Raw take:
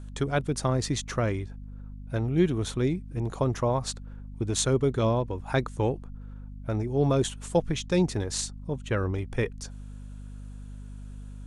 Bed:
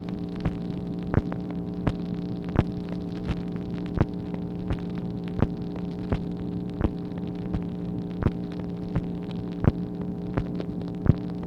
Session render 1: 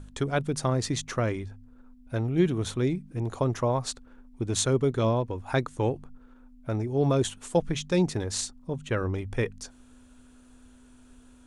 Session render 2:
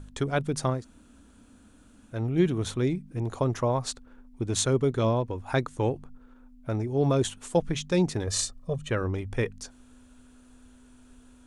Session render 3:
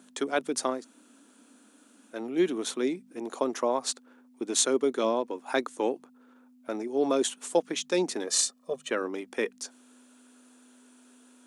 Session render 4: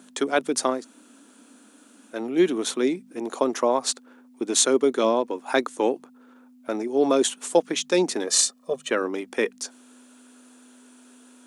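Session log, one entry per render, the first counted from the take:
de-hum 50 Hz, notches 4
0.77–2.15 s: room tone, crossfade 0.16 s; 8.27–8.91 s: comb 1.7 ms, depth 94%
steep high-pass 240 Hz 36 dB/octave; treble shelf 4.6 kHz +5 dB
trim +5.5 dB; peak limiter -2 dBFS, peak gain reduction 1 dB

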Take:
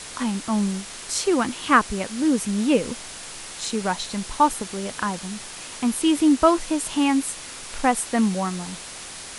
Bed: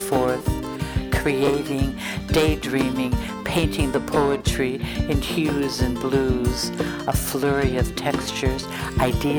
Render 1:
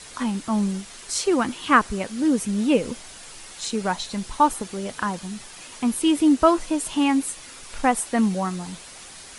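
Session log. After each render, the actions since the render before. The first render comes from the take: noise reduction 7 dB, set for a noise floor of -38 dBFS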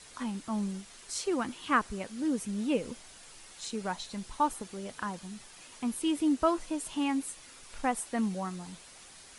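trim -10 dB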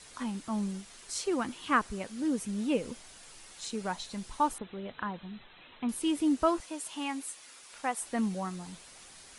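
4.58–5.89 s: brick-wall FIR low-pass 4.1 kHz; 6.60–8.02 s: high-pass 590 Hz 6 dB/octave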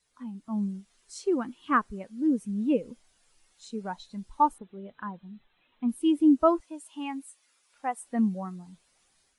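level rider gain up to 4.5 dB; spectral contrast expander 1.5:1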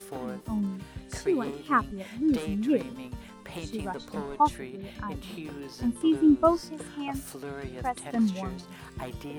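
add bed -17.5 dB

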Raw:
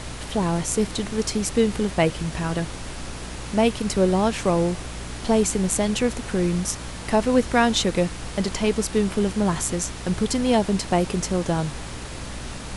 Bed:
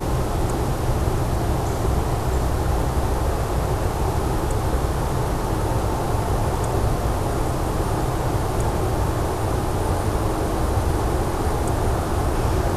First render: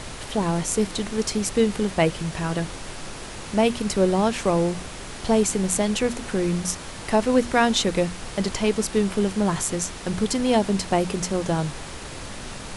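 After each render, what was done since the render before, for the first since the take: hum notches 60/120/180/240/300 Hz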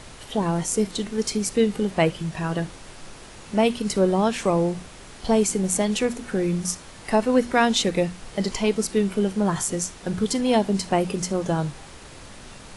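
noise print and reduce 7 dB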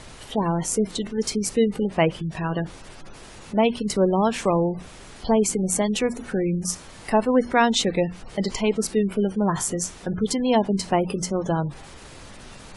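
spectral gate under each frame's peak -30 dB strong; dynamic bell 980 Hz, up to +3 dB, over -35 dBFS, Q 3.1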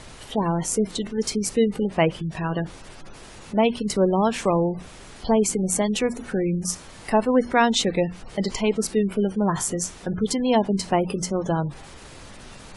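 no audible change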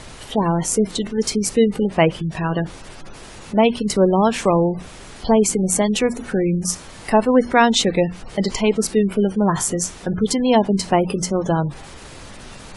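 trim +4.5 dB

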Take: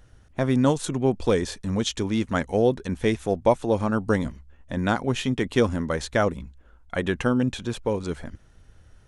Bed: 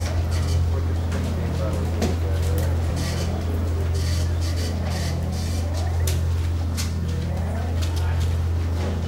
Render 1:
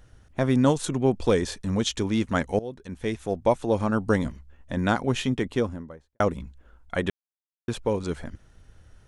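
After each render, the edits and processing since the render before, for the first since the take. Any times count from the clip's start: 2.59–4.24 s: fade in equal-power, from -19.5 dB; 5.15–6.20 s: studio fade out; 7.10–7.68 s: mute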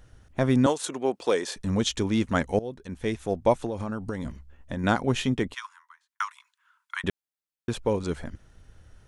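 0.66–1.56 s: high-pass 400 Hz; 3.66–4.84 s: compression 16:1, threshold -26 dBFS; 5.54–7.04 s: steep high-pass 950 Hz 96 dB/octave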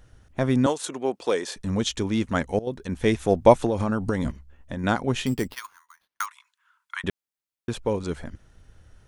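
2.67–4.31 s: gain +7 dB; 5.26–6.26 s: sample-rate reducer 7.8 kHz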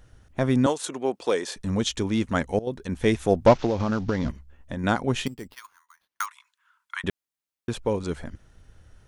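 3.46–4.29 s: CVSD coder 32 kbps; 5.28–6.23 s: fade in, from -17 dB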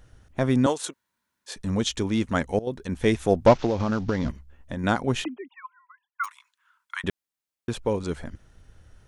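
0.91–1.49 s: room tone, crossfade 0.06 s; 5.24–6.24 s: formants replaced by sine waves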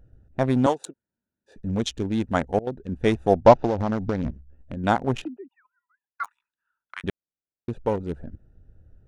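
local Wiener filter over 41 samples; dynamic bell 790 Hz, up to +7 dB, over -39 dBFS, Q 1.7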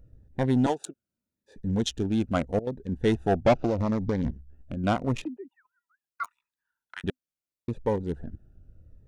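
saturation -12.5 dBFS, distortion -10 dB; Shepard-style phaser falling 0.79 Hz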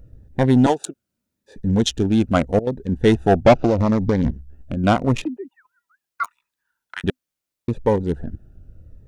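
trim +8.5 dB

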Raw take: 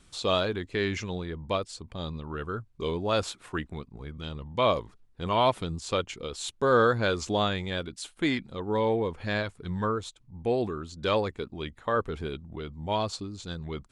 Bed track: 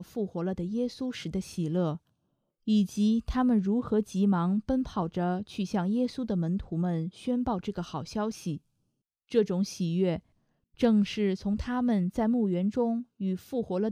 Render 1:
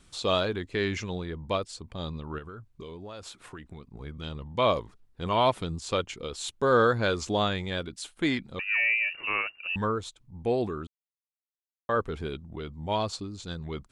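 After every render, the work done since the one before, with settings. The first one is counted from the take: 2.38–3.84 s: compression 10:1, threshold -38 dBFS; 8.59–9.76 s: frequency inversion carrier 2.8 kHz; 10.87–11.89 s: mute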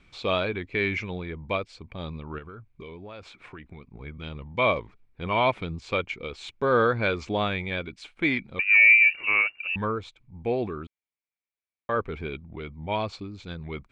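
low-pass 3.4 kHz 12 dB/octave; peaking EQ 2.3 kHz +14 dB 0.21 oct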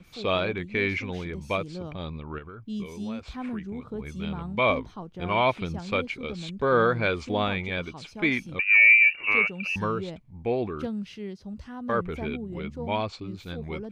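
add bed track -9 dB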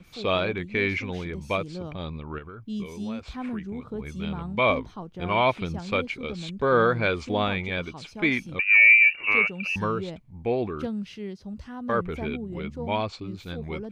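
trim +1 dB

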